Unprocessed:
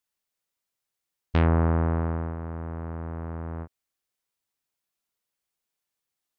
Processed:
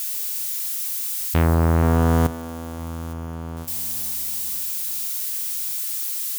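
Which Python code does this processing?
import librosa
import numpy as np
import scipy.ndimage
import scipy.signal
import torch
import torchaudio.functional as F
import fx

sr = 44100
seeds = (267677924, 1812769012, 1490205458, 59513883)

y = x + 0.5 * 10.0 ** (-26.0 / 20.0) * np.diff(np.sign(x), prepend=np.sign(x[:1]))
y = fx.high_shelf(y, sr, hz=3600.0, db=-10.0, at=(3.13, 3.57))
y = fx.echo_split(y, sr, split_hz=1800.0, low_ms=481, high_ms=206, feedback_pct=52, wet_db=-13.0)
y = fx.env_flatten(y, sr, amount_pct=100, at=(1.49, 2.27))
y = F.gain(torch.from_numpy(y), 3.0).numpy()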